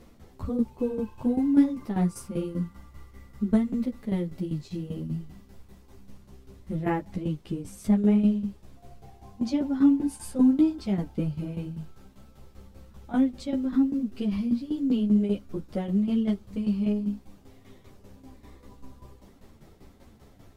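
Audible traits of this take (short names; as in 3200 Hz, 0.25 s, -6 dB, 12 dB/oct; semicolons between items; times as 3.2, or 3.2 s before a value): tremolo saw down 5.1 Hz, depth 75%; a shimmering, thickened sound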